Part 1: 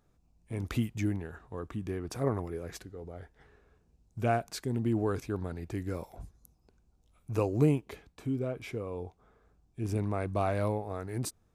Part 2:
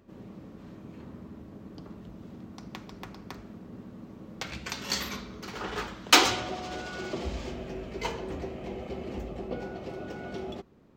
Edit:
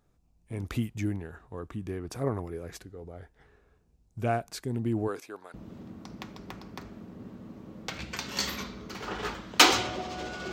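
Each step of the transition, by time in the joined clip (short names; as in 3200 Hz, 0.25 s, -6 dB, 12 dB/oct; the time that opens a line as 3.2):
part 1
5.07–5.54 HPF 280 Hz -> 1000 Hz
5.54 switch to part 2 from 2.07 s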